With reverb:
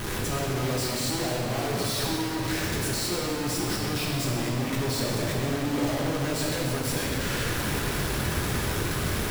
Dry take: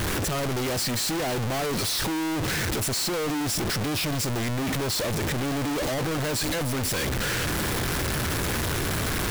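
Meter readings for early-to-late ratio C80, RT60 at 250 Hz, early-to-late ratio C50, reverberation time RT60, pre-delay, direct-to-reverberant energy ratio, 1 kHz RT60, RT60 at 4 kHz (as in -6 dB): 0.5 dB, 3.4 s, -0.5 dB, 3.0 s, 3 ms, -4.0 dB, 2.8 s, 2.0 s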